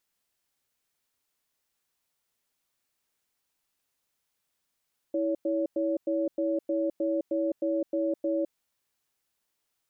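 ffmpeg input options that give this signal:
-f lavfi -i "aevalsrc='0.0422*(sin(2*PI*326*t)+sin(2*PI*563*t))*clip(min(mod(t,0.31),0.21-mod(t,0.31))/0.005,0,1)':d=3.34:s=44100"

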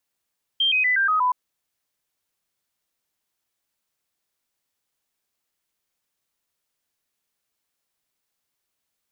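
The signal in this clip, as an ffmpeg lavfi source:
-f lavfi -i "aevalsrc='0.141*clip(min(mod(t,0.12),0.12-mod(t,0.12))/0.005,0,1)*sin(2*PI*3170*pow(2,-floor(t/0.12)/3)*mod(t,0.12))':d=0.72:s=44100"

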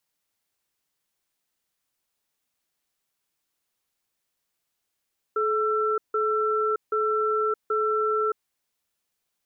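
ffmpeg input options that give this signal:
-f lavfi -i "aevalsrc='0.0631*(sin(2*PI*430*t)+sin(2*PI*1340*t))*clip(min(mod(t,0.78),0.62-mod(t,0.78))/0.005,0,1)':d=3.08:s=44100"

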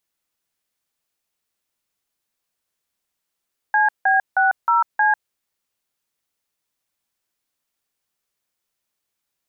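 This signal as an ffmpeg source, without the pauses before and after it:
-f lavfi -i "aevalsrc='0.158*clip(min(mod(t,0.313),0.147-mod(t,0.313))/0.002,0,1)*(eq(floor(t/0.313),0)*(sin(2*PI*852*mod(t,0.313))+sin(2*PI*1633*mod(t,0.313)))+eq(floor(t/0.313),1)*(sin(2*PI*770*mod(t,0.313))+sin(2*PI*1633*mod(t,0.313)))+eq(floor(t/0.313),2)*(sin(2*PI*770*mod(t,0.313))+sin(2*PI*1477*mod(t,0.313)))+eq(floor(t/0.313),3)*(sin(2*PI*941*mod(t,0.313))+sin(2*PI*1336*mod(t,0.313)))+eq(floor(t/0.313),4)*(sin(2*PI*852*mod(t,0.313))+sin(2*PI*1633*mod(t,0.313))))':d=1.565:s=44100"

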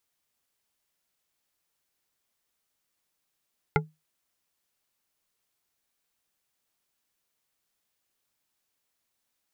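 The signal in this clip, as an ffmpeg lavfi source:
-f lavfi -i "aevalsrc='0.106*pow(10,-3*t/0.22)*sin(2*PI*156*t)+0.106*pow(10,-3*t/0.108)*sin(2*PI*430.1*t)+0.106*pow(10,-3*t/0.068)*sin(2*PI*843*t)+0.106*pow(10,-3*t/0.048)*sin(2*PI*1393.5*t)+0.106*pow(10,-3*t/0.036)*sin(2*PI*2081*t)':d=0.89:s=44100"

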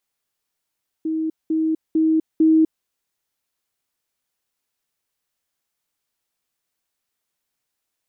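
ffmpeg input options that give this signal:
-f lavfi -i "aevalsrc='pow(10,(-20+3*floor(t/0.45))/20)*sin(2*PI*318*t)*clip(min(mod(t,0.45),0.25-mod(t,0.45))/0.005,0,1)':d=1.8:s=44100"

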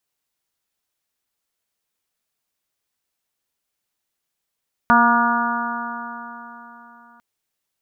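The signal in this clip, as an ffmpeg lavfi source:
-f lavfi -i "aevalsrc='0.141*pow(10,-3*t/3.61)*sin(2*PI*234.16*t)+0.02*pow(10,-3*t/3.61)*sin(2*PI*469.31*t)+0.1*pow(10,-3*t/3.61)*sin(2*PI*706.41*t)+0.188*pow(10,-3*t/3.61)*sin(2*PI*946.43*t)+0.168*pow(10,-3*t/3.61)*sin(2*PI*1190.3*t)+0.168*pow(10,-3*t/3.61)*sin(2*PI*1438.95*t)+0.0355*pow(10,-3*t/3.61)*sin(2*PI*1693.25*t)':d=2.3:s=44100"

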